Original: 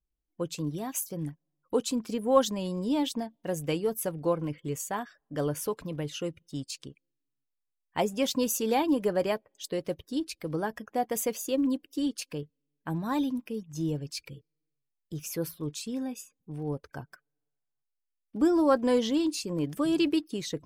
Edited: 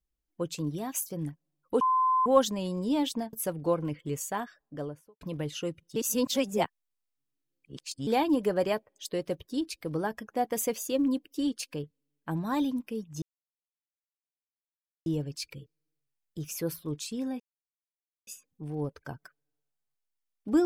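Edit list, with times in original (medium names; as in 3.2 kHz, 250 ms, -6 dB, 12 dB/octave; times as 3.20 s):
1.81–2.26 s: bleep 1.03 kHz -21.5 dBFS
3.33–3.92 s: delete
5.03–5.80 s: studio fade out
6.55–8.66 s: reverse
13.81 s: insert silence 1.84 s
16.15 s: insert silence 0.87 s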